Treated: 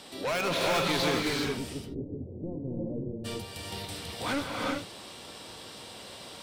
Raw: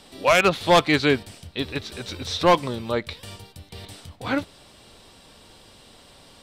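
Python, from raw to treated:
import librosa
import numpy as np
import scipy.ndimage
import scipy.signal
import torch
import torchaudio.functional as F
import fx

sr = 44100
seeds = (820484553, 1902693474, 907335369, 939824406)

p1 = fx.highpass(x, sr, hz=190.0, slope=6)
p2 = fx.over_compress(p1, sr, threshold_db=-24.0, ratio=-1.0)
p3 = p1 + (p2 * librosa.db_to_amplitude(0.5))
p4 = 10.0 ** (-21.0 / 20.0) * np.tanh(p3 / 10.0 ** (-21.0 / 20.0))
p5 = fx.gaussian_blur(p4, sr, sigma=20.0, at=(1.52, 3.24), fade=0.02)
p6 = fx.rev_gated(p5, sr, seeds[0], gate_ms=430, shape='rising', drr_db=-1.5)
y = p6 * librosa.db_to_amplitude(-6.5)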